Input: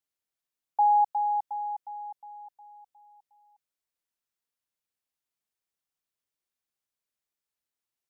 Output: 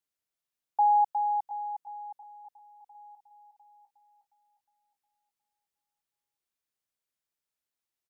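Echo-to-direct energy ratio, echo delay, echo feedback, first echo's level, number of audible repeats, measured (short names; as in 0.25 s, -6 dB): -19.0 dB, 0.702 s, 56%, -20.5 dB, 3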